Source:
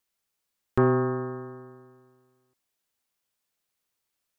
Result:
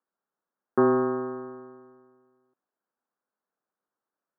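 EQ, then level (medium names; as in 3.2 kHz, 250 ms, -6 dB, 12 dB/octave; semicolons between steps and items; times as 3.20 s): high-pass 180 Hz 24 dB/octave; steep low-pass 1.6 kHz 48 dB/octave; +1.5 dB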